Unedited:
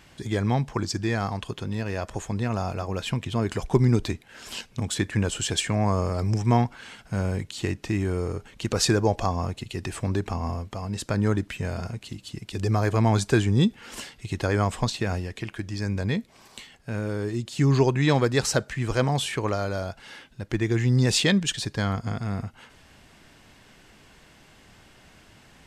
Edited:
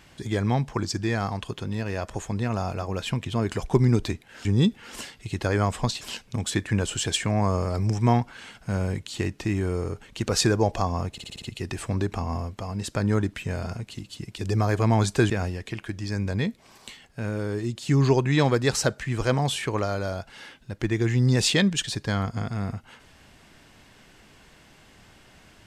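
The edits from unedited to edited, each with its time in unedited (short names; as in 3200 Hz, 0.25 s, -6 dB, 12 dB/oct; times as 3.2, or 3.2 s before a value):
9.56 stutter 0.06 s, 6 plays
13.44–15 move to 4.45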